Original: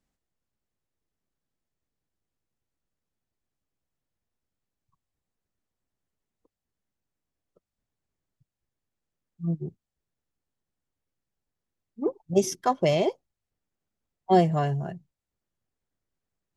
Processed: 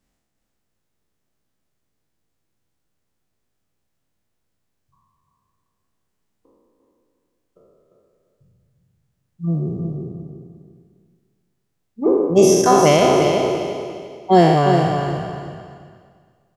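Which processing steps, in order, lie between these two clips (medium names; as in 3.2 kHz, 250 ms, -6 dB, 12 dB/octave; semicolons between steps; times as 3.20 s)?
spectral sustain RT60 1.81 s; feedback delay 349 ms, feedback 27%, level -6 dB; trim +6 dB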